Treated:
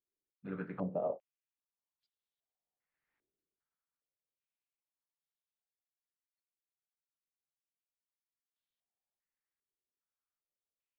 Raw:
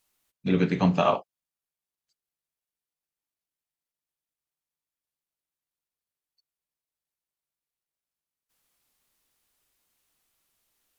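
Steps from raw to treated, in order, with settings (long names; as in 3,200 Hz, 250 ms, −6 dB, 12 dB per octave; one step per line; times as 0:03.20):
source passing by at 0:03.18, 10 m/s, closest 1.5 metres
low-pass on a step sequencer 2.5 Hz 390–3,600 Hz
level +6.5 dB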